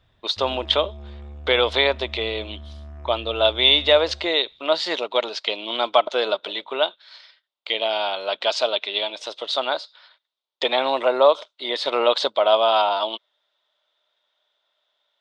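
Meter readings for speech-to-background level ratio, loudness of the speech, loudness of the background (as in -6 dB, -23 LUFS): 19.0 dB, -21.5 LUFS, -40.5 LUFS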